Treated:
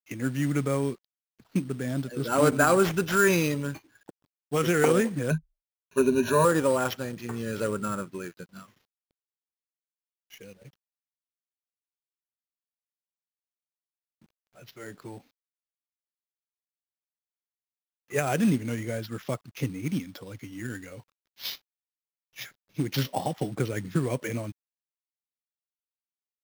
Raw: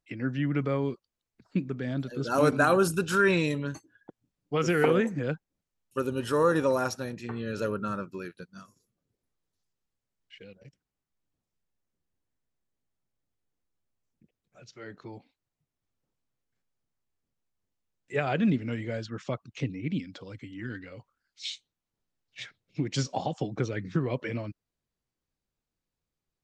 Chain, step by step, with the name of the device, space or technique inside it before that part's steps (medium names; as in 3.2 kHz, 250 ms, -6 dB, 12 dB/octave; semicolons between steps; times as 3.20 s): early companding sampler (sample-rate reducer 8.7 kHz, jitter 0%; companded quantiser 6-bit); 5.30–6.45 s: rippled EQ curve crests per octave 1.5, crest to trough 18 dB; trim +1.5 dB